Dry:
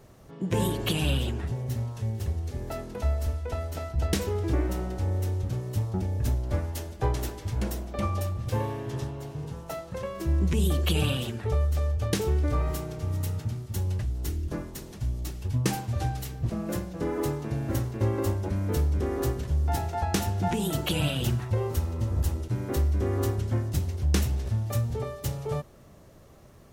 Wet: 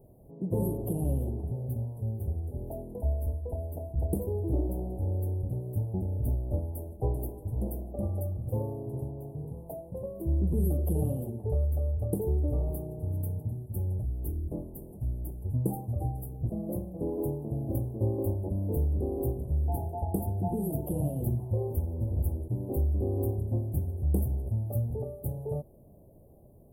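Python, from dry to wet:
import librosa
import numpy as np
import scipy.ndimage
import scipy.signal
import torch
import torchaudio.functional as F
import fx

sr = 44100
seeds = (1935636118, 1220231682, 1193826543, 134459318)

y = scipy.signal.sosfilt(scipy.signal.cheby2(4, 40, [1300.0, 6700.0], 'bandstop', fs=sr, output='sos'), x)
y = F.gain(torch.from_numpy(y), -2.5).numpy()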